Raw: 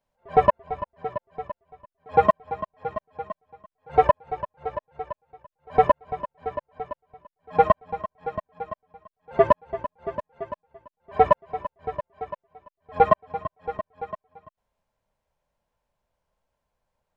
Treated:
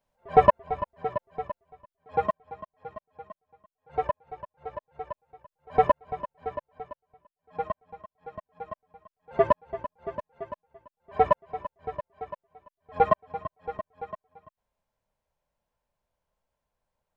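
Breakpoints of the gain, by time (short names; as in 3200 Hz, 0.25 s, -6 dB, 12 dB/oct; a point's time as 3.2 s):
1.4 s +0.5 dB
2.43 s -10.5 dB
4.38 s -10.5 dB
5.11 s -3 dB
6.51 s -3 dB
7.53 s -14 dB
8.15 s -14 dB
8.72 s -4 dB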